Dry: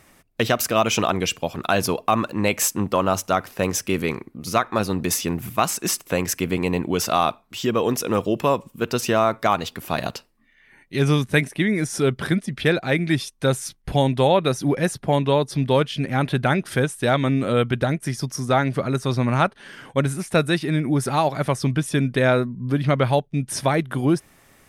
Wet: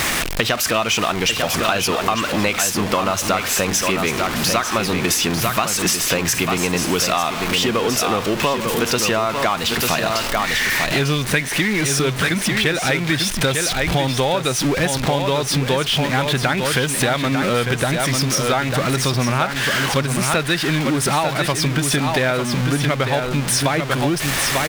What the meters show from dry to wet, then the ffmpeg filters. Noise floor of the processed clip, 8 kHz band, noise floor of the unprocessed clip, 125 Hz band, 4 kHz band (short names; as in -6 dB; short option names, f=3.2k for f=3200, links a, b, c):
-25 dBFS, +8.0 dB, -56 dBFS, +1.0 dB, +10.0 dB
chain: -filter_complex "[0:a]aeval=exprs='val(0)+0.5*0.075*sgn(val(0))':c=same,equalizer=f=2.8k:w=0.34:g=8,asplit=2[a][b];[b]aecho=0:1:896:0.447[c];[a][c]amix=inputs=2:normalize=0,acompressor=threshold=-20dB:ratio=6,volume=4dB"